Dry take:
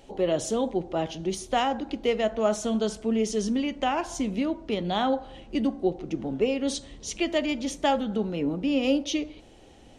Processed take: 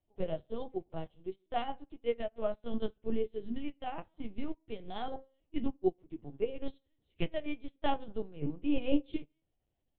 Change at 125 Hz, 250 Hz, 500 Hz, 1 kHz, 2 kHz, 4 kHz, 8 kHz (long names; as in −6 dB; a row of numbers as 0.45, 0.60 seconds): −8.5 dB, −10.5 dB, −10.0 dB, −11.0 dB, −13.5 dB, −15.0 dB, below −40 dB